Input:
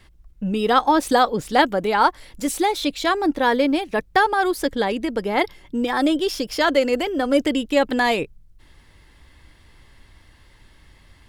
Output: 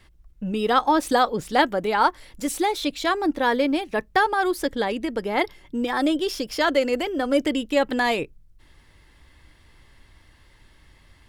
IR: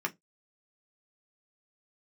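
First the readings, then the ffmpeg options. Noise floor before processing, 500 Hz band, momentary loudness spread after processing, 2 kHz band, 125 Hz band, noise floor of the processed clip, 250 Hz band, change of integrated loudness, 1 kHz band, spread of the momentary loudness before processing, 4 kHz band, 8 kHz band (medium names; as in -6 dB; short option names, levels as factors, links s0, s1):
-53 dBFS, -2.5 dB, 7 LU, -2.0 dB, -3.5 dB, -56 dBFS, -3.0 dB, -2.5 dB, -2.5 dB, 7 LU, -2.5 dB, -2.5 dB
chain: -filter_complex "[0:a]asplit=2[s0][s1];[1:a]atrim=start_sample=2205[s2];[s1][s2]afir=irnorm=-1:irlink=0,volume=0.0631[s3];[s0][s3]amix=inputs=2:normalize=0,volume=0.708"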